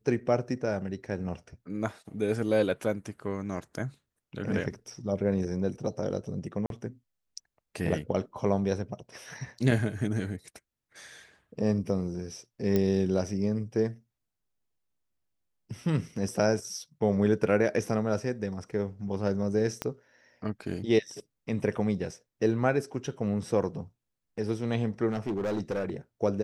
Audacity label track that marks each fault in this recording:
6.660000	6.700000	drop-out 42 ms
12.760000	12.760000	click −14 dBFS
19.820000	19.820000	click −15 dBFS
25.090000	25.910000	clipping −26.5 dBFS

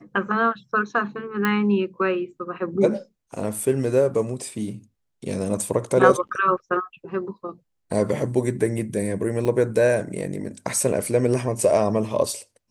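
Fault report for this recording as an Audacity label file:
1.450000	1.450000	click −9 dBFS
9.450000	9.450000	drop-out 3.7 ms

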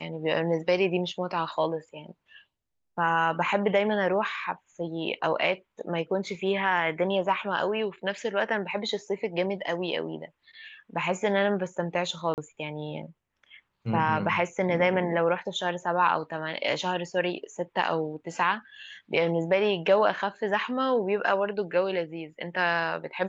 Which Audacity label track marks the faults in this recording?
12.340000	12.380000	drop-out 38 ms

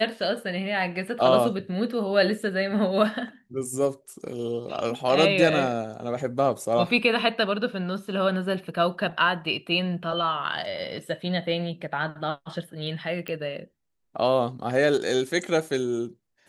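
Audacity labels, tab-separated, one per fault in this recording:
13.280000	13.280000	click −19 dBFS

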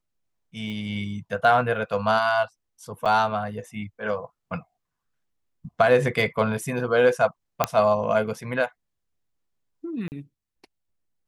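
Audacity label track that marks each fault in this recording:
0.700000	0.700000	click −25 dBFS
3.050000	3.060000	drop-out 6.7 ms
7.640000	7.640000	click −5 dBFS
10.080000	10.120000	drop-out 39 ms

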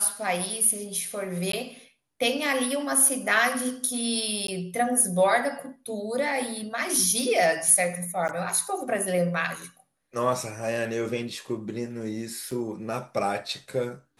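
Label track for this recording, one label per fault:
1.520000	1.530000	drop-out 13 ms
4.470000	4.480000	drop-out 13 ms
8.280000	8.290000	drop-out 9.8 ms
12.510000	12.510000	drop-out 3.5 ms

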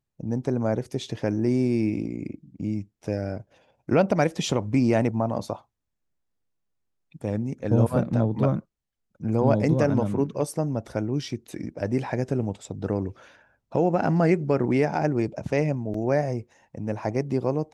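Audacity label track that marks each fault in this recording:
15.940000	15.940000	drop-out 3.7 ms

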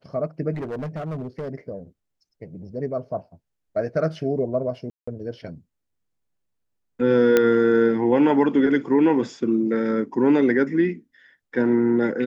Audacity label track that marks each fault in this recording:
0.530000	1.490000	clipping −26.5 dBFS
4.900000	5.080000	drop-out 175 ms
7.370000	7.370000	click −5 dBFS

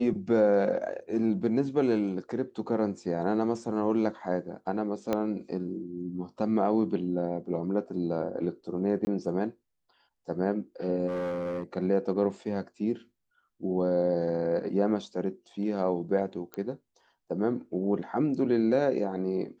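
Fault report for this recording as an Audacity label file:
5.130000	5.130000	click −15 dBFS
9.050000	9.070000	drop-out 20 ms
11.070000	11.630000	clipping −29 dBFS
16.540000	16.540000	click −22 dBFS

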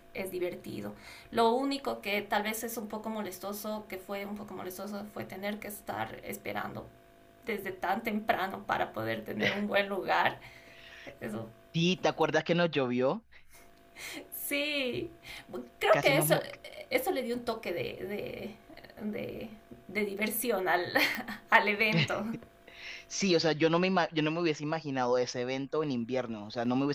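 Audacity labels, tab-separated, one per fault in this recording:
21.150000	21.150000	click −18 dBFS

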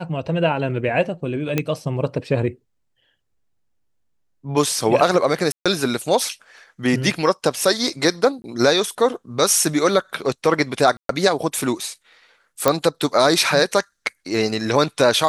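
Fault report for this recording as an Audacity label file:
1.580000	1.580000	click −6 dBFS
5.520000	5.660000	drop-out 136 ms
8.420000	8.440000	drop-out 20 ms
10.970000	11.090000	drop-out 123 ms
12.680000	12.680000	click −1 dBFS

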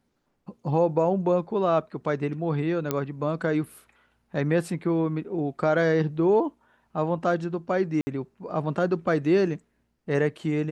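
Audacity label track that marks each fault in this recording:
2.910000	2.910000	click −11 dBFS
8.010000	8.070000	drop-out 60 ms

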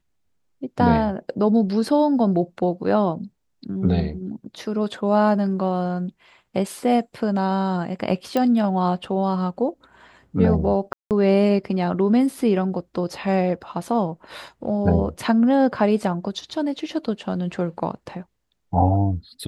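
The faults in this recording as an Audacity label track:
8.370000	8.370000	click −10 dBFS
10.930000	11.110000	drop-out 178 ms

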